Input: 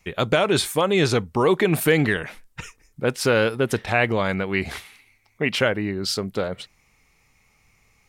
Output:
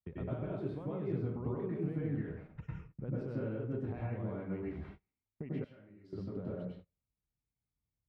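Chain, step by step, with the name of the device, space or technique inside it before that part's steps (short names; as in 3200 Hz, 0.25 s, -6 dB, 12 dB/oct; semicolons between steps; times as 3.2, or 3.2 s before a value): television next door (compressor 5:1, threshold -35 dBFS, peak gain reduction 19 dB; LPF 440 Hz 12 dB/oct; reverb RT60 0.60 s, pre-delay 93 ms, DRR -6 dB); gate -45 dBFS, range -29 dB; 5.64–6.13 pre-emphasis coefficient 0.9; HPF 43 Hz; passive tone stack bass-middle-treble 5-5-5; gain +12.5 dB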